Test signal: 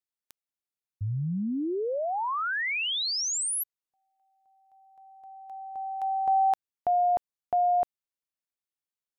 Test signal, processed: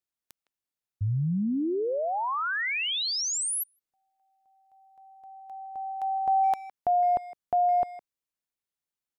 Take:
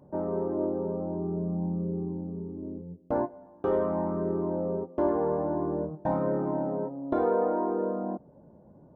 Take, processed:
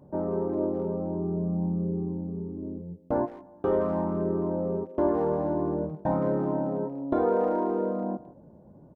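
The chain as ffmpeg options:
-filter_complex "[0:a]lowshelf=f=350:g=3.5,asplit=2[a][b];[b]adelay=160,highpass=300,lowpass=3.4k,asoftclip=type=hard:threshold=-23.5dB,volume=-16dB[c];[a][c]amix=inputs=2:normalize=0"

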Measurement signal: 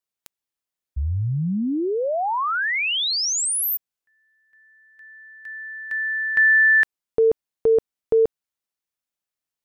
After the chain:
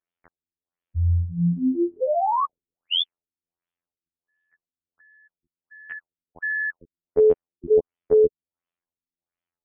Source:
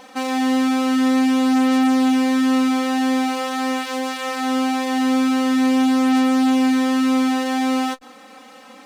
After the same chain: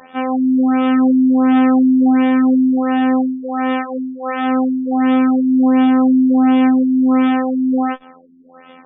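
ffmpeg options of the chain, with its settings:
-af "afftfilt=real='hypot(re,im)*cos(PI*b)':imag='0':win_size=2048:overlap=0.75,afftfilt=real='re*lt(b*sr/1024,350*pow(3700/350,0.5+0.5*sin(2*PI*1.4*pts/sr)))':imag='im*lt(b*sr/1024,350*pow(3700/350,0.5+0.5*sin(2*PI*1.4*pts/sr)))':win_size=1024:overlap=0.75,volume=5dB"

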